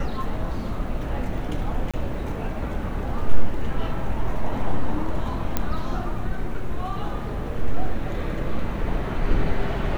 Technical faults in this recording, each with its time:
1.91–1.94 gap 26 ms
5.57 pop -8 dBFS

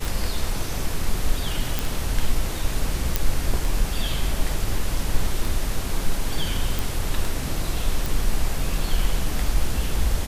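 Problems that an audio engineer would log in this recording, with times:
tick 33 1/3 rpm
1.79 pop
3.16 pop
6.79 pop
8.06 pop

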